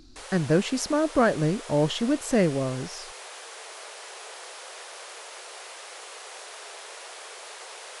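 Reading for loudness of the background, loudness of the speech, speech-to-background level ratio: -40.5 LUFS, -25.0 LUFS, 15.5 dB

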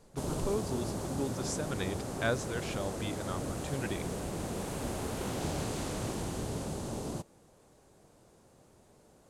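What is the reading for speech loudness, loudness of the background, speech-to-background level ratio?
-38.0 LUFS, -37.5 LUFS, -0.5 dB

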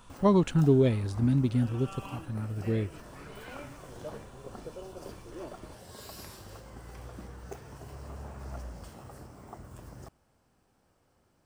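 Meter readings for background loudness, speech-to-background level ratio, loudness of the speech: -46.0 LUFS, 18.5 dB, -27.5 LUFS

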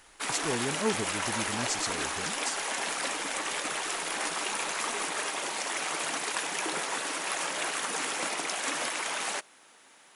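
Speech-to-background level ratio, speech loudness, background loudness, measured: -4.5 dB, -35.5 LUFS, -31.0 LUFS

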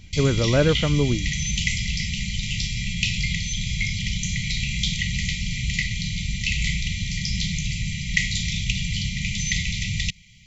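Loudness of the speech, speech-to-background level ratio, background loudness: -22.0 LUFS, 3.5 dB, -25.5 LUFS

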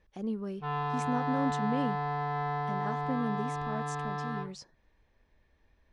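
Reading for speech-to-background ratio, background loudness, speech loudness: -2.5 dB, -34.0 LUFS, -36.5 LUFS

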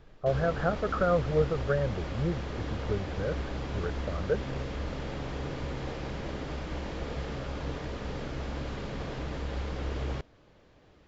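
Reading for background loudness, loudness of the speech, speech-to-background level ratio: -36.5 LUFS, -31.5 LUFS, 5.0 dB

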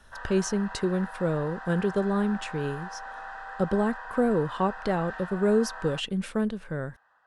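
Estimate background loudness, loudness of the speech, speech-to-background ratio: -40.0 LUFS, -28.0 LUFS, 12.0 dB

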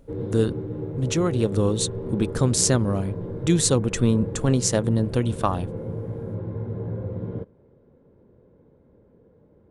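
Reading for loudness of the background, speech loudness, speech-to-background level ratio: -32.0 LUFS, -23.5 LUFS, 8.5 dB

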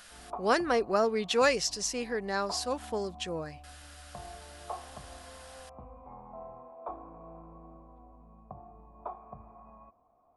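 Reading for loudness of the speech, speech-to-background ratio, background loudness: -30.0 LUFS, 18.0 dB, -48.0 LUFS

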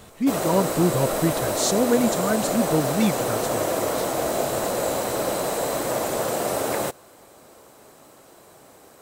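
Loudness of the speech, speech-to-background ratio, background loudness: -24.0 LUFS, 1.0 dB, -25.0 LUFS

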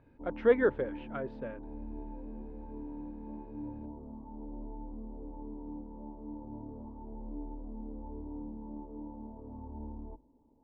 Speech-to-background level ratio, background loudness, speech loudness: 13.5 dB, -45.0 LUFS, -31.5 LUFS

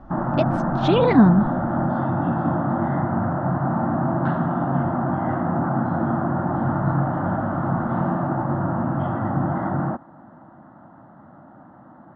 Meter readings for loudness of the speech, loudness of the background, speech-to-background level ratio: -19.5 LUFS, -23.0 LUFS, 3.5 dB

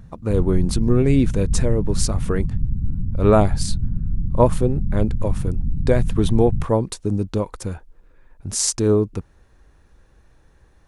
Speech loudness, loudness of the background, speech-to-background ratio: -21.5 LUFS, -26.5 LUFS, 5.0 dB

